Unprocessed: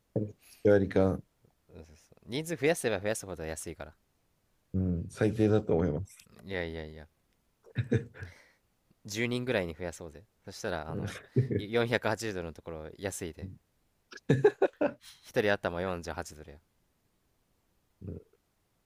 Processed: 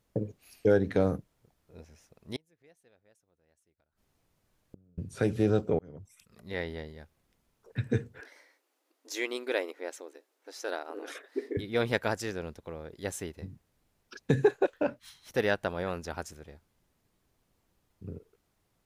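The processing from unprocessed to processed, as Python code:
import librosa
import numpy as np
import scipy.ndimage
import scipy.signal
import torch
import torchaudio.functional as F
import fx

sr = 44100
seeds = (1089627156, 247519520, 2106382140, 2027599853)

y = fx.gate_flip(x, sr, shuts_db=-33.0, range_db=-34, at=(2.36, 4.98))
y = fx.brickwall_highpass(y, sr, low_hz=260.0, at=(8.2, 11.57))
y = fx.edit(y, sr, fx.fade_in_span(start_s=5.79, length_s=0.76), tone=tone)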